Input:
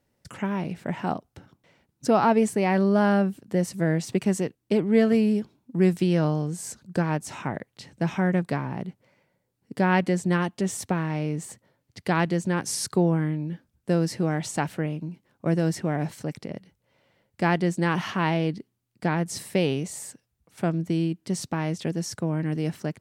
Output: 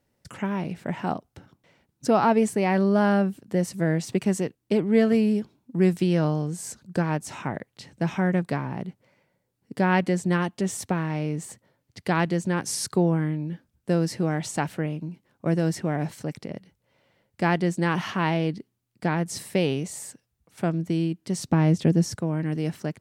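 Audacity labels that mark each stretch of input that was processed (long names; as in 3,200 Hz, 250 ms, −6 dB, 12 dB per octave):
21.480000	22.170000	low-shelf EQ 470 Hz +10.5 dB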